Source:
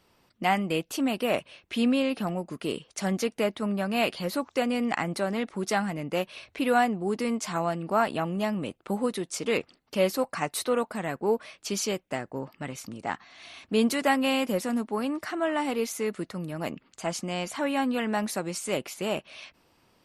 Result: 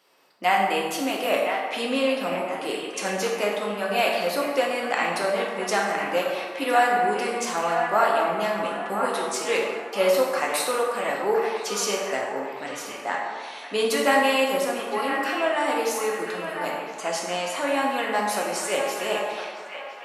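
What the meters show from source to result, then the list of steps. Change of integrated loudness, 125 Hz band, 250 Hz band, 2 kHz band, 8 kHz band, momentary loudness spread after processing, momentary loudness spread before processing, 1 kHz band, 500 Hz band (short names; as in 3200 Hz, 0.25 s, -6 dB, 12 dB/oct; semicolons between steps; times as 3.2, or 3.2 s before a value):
+4.0 dB, -7.5 dB, -3.5 dB, +7.0 dB, +5.0 dB, 9 LU, 10 LU, +7.0 dB, +5.0 dB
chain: HPF 420 Hz 12 dB/oct; on a send: band-limited delay 1.011 s, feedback 37%, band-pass 1500 Hz, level -6 dB; on the sum: plate-style reverb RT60 1.6 s, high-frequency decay 0.55×, DRR -2 dB; gain +2 dB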